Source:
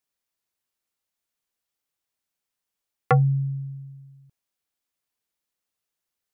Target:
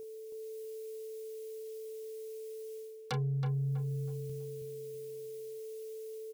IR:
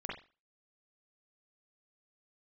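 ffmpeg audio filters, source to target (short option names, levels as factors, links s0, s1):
-filter_complex "[0:a]aexciter=amount=3.8:drive=4.4:freq=2100,dynaudnorm=f=280:g=3:m=1.78,aeval=exprs='val(0)+0.00447*sin(2*PI*440*n/s)':c=same,aeval=exprs='0.75*sin(PI/2*3.16*val(0)/0.75)':c=same,areverse,acompressor=threshold=0.0631:ratio=12,areverse,asplit=2[s0][s1];[s1]adelay=31,volume=0.282[s2];[s0][s2]amix=inputs=2:normalize=0,asplit=2[s3][s4];[s4]adelay=323,lowpass=f=1900:p=1,volume=0.501,asplit=2[s5][s6];[s6]adelay=323,lowpass=f=1900:p=1,volume=0.37,asplit=2[s7][s8];[s8]adelay=323,lowpass=f=1900:p=1,volume=0.37,asplit=2[s9][s10];[s10]adelay=323,lowpass=f=1900:p=1,volume=0.37[s11];[s3][s5][s7][s9][s11]amix=inputs=5:normalize=0,volume=0.376"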